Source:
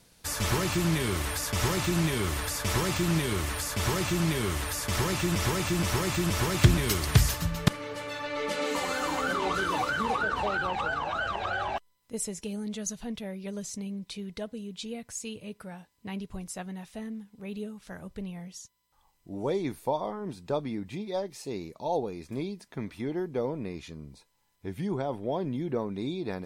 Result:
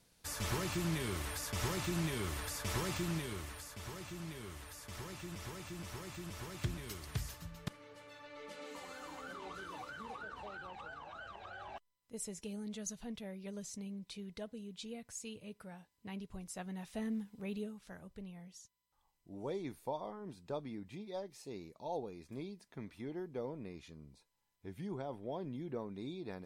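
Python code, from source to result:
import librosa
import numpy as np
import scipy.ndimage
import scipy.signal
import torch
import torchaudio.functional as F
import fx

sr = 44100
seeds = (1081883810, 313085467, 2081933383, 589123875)

y = fx.gain(x, sr, db=fx.line((2.96, -9.5), (3.82, -18.5), (11.55, -18.5), (12.34, -8.5), (16.45, -8.5), (17.19, 1.0), (18.07, -11.0)))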